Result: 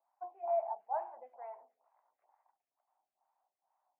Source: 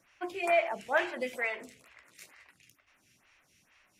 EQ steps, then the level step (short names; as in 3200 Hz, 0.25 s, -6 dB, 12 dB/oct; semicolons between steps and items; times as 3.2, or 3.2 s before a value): Butterworth band-pass 820 Hz, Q 3.3; air absorption 190 m; tilt -1.5 dB/oct; 0.0 dB